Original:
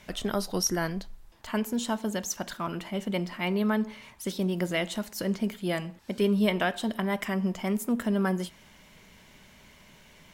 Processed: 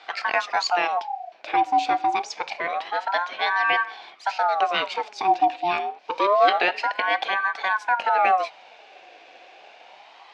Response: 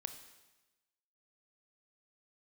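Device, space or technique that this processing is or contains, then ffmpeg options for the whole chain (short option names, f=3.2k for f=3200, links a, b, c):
voice changer toy: -af "aeval=exprs='val(0)*sin(2*PI*940*n/s+940*0.45/0.27*sin(2*PI*0.27*n/s))':c=same,highpass=450,equalizer=f=750:t=q:w=4:g=9,equalizer=f=1.3k:t=q:w=4:g=-5,equalizer=f=2.4k:t=q:w=4:g=6,lowpass=f=4.9k:w=0.5412,lowpass=f=4.9k:w=1.3066,volume=7.5dB"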